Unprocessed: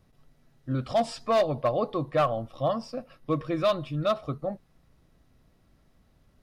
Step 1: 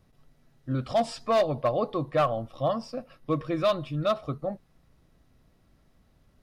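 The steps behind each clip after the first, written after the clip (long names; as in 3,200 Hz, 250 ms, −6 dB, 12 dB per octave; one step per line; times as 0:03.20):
no processing that can be heard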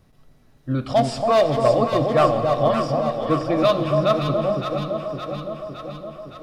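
delay that swaps between a low-pass and a high-pass 282 ms, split 990 Hz, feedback 78%, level −3.5 dB
on a send at −10 dB: convolution reverb RT60 3.0 s, pre-delay 7 ms
on the sum: level +6 dB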